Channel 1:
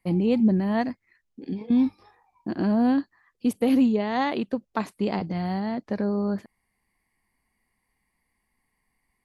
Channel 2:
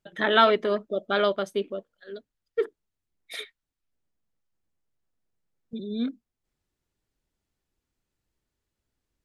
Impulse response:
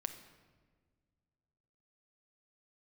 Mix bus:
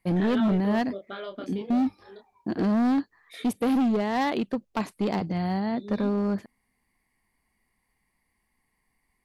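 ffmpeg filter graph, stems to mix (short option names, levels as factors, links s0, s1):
-filter_complex "[0:a]volume=11.2,asoftclip=hard,volume=0.0891,volume=1.06[s0];[1:a]acompressor=threshold=0.0501:ratio=6,flanger=delay=22.5:depth=4.5:speed=0.3,volume=0.562,asplit=2[s1][s2];[s2]volume=0.106[s3];[2:a]atrim=start_sample=2205[s4];[s3][s4]afir=irnorm=-1:irlink=0[s5];[s0][s1][s5]amix=inputs=3:normalize=0"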